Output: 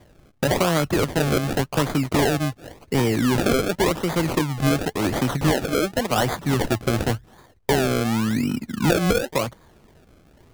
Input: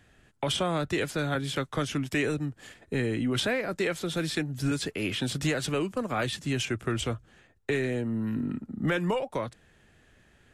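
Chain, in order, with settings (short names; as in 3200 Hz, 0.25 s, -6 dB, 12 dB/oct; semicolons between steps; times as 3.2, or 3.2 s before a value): 5.52–6.11 HPF 220 Hz; decimation with a swept rate 32×, swing 100% 0.91 Hz; gain +8 dB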